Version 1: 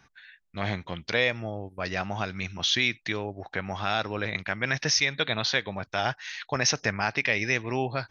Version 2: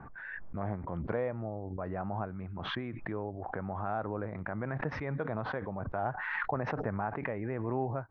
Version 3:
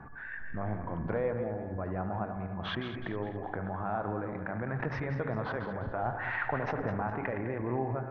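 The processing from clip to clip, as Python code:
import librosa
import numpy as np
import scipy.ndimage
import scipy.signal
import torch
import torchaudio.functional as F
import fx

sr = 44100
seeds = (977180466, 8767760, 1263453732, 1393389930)

y1 = scipy.signal.sosfilt(scipy.signal.butter(4, 1200.0, 'lowpass', fs=sr, output='sos'), x)
y1 = fx.pre_swell(y1, sr, db_per_s=24.0)
y1 = y1 * librosa.db_to_amplitude(-5.0)
y2 = fx.reverse_delay_fb(y1, sr, ms=103, feedback_pct=61, wet_db=-8)
y2 = fx.echo_bbd(y2, sr, ms=74, stages=1024, feedback_pct=74, wet_db=-13.5)
y2 = y2 + 10.0 ** (-59.0 / 20.0) * np.sin(2.0 * np.pi * 1700.0 * np.arange(len(y2)) / sr)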